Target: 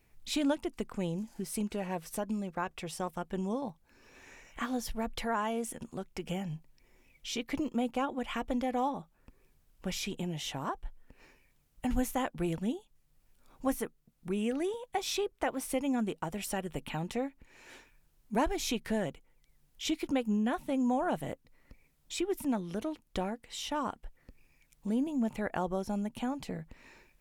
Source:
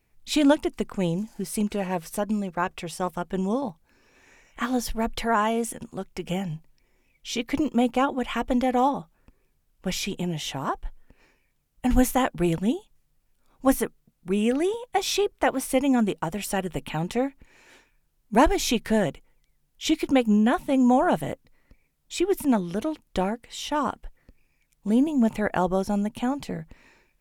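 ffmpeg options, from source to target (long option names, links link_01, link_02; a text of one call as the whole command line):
ffmpeg -i in.wav -af "acompressor=threshold=-52dB:ratio=1.5,volume=2dB" out.wav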